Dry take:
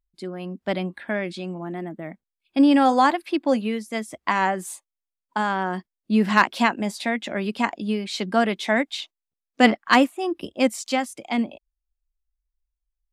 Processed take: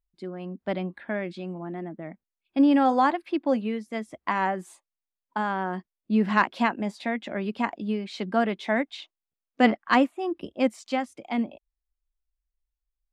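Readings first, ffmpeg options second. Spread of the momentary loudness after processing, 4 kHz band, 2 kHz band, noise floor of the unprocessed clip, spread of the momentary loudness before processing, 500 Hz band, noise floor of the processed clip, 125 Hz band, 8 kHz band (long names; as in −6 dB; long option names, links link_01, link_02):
14 LU, −8.5 dB, −5.5 dB, below −85 dBFS, 15 LU, −3.5 dB, below −85 dBFS, −3.0 dB, below −10 dB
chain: -af "aemphasis=mode=reproduction:type=75kf,volume=-3dB"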